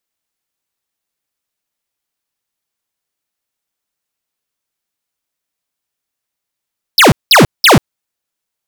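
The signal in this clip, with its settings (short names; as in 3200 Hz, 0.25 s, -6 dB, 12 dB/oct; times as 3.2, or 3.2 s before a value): burst of laser zaps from 5500 Hz, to 100 Hz, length 0.14 s square, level -5 dB, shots 3, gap 0.19 s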